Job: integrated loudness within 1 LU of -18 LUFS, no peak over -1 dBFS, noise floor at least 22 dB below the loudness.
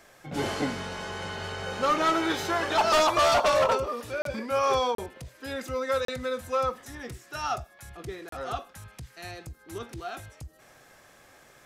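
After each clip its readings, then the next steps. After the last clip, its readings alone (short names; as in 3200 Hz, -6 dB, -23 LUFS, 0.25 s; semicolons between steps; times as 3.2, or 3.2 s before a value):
dropouts 4; longest dropout 33 ms; loudness -27.5 LUFS; peak -15.0 dBFS; loudness target -18.0 LUFS
-> interpolate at 4.22/4.95/6.05/8.29, 33 ms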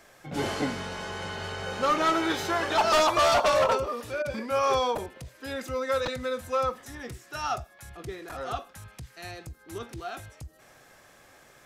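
dropouts 0; loudness -27.5 LUFS; peak -15.0 dBFS; loudness target -18.0 LUFS
-> gain +9.5 dB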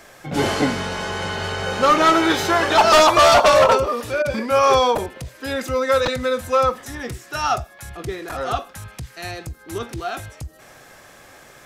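loudness -18.0 LUFS; peak -5.5 dBFS; noise floor -47 dBFS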